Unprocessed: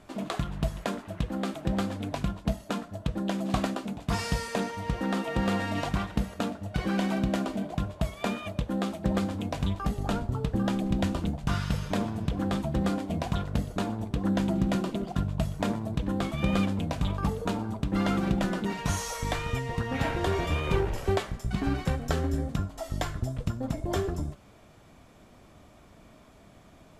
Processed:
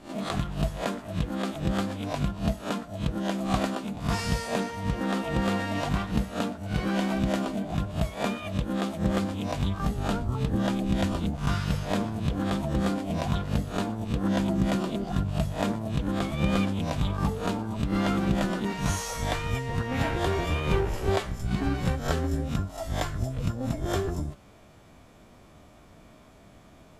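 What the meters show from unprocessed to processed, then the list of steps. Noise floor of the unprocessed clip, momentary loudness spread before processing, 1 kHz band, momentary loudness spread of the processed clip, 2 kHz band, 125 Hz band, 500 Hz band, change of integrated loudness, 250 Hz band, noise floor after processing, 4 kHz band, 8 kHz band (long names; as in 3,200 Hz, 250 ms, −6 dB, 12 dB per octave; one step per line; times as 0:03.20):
−54 dBFS, 6 LU, +1.5 dB, 5 LU, +1.5 dB, +1.5 dB, +1.5 dB, +1.5 dB, +1.0 dB, −53 dBFS, +2.0 dB, +1.5 dB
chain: peak hold with a rise ahead of every peak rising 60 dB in 0.34 s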